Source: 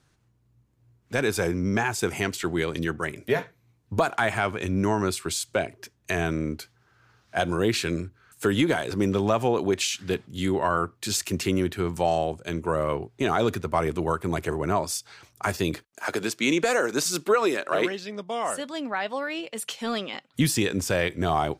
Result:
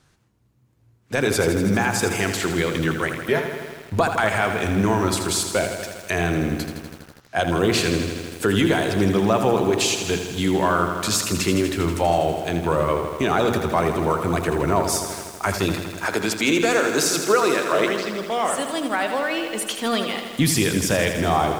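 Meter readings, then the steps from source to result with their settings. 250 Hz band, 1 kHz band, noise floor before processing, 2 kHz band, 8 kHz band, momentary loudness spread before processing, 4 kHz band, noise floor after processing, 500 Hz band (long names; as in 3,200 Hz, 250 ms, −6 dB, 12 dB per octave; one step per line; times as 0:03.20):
+5.0 dB, +5.0 dB, −66 dBFS, +5.0 dB, +6.5 dB, 8 LU, +6.0 dB, −57 dBFS, +4.5 dB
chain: tape wow and flutter 48 cents
in parallel at −0.5 dB: brickwall limiter −18.5 dBFS, peak gain reduction 8.5 dB
on the sum: mains-hum notches 60/120/180/240/300/360/420 Hz
feedback echo at a low word length 81 ms, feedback 80%, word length 7 bits, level −8 dB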